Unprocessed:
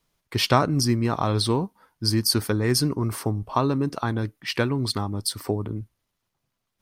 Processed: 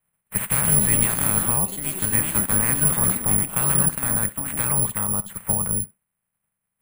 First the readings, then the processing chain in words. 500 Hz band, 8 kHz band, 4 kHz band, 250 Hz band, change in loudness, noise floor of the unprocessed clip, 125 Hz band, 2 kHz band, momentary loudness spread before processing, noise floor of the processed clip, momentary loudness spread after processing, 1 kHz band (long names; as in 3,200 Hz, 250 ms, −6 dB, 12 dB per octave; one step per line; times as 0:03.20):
−7.5 dB, +14.0 dB, −13.0 dB, −4.0 dB, +5.0 dB, −80 dBFS, −2.0 dB, +2.0 dB, 8 LU, −81 dBFS, 7 LU, −4.0 dB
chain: ceiling on every frequency bin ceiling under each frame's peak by 28 dB
low-pass filter 2,400 Hz 24 dB per octave
in parallel at −2.5 dB: brickwall limiter −15.5 dBFS, peak gain reduction 11 dB
on the sum: soft clipping −12.5 dBFS, distortion −14 dB
low shelf with overshoot 230 Hz +7 dB, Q 3
on a send: feedback echo with a high-pass in the loop 66 ms, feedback 17%, high-pass 380 Hz, level −15.5 dB
on the sum: delay with pitch and tempo change per echo 262 ms, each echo +5 semitones, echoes 3, each echo −6 dB
bad sample-rate conversion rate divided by 4×, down filtered, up zero stuff
level −8 dB